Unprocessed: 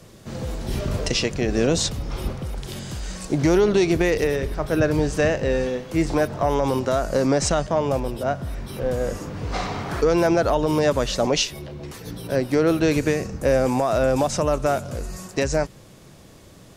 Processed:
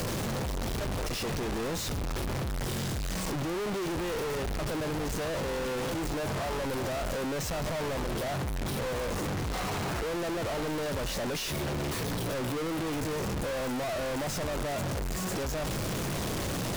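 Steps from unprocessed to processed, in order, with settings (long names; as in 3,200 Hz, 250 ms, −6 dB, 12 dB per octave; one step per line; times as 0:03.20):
sign of each sample alone
high-shelf EQ 3,700 Hz −7 dB
in parallel at −4.5 dB: wave folding −32.5 dBFS
on the sum: level −7.5 dB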